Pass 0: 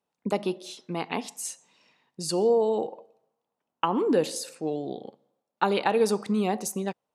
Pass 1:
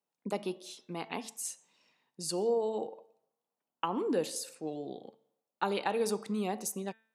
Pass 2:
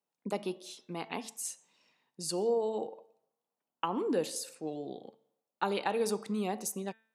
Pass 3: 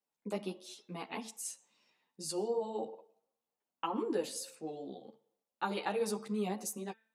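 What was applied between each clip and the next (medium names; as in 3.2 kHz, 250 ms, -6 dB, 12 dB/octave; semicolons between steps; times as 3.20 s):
high-pass 120 Hz; treble shelf 7 kHz +6.5 dB; de-hum 222.8 Hz, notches 17; trim -7.5 dB
no audible change
three-phase chorus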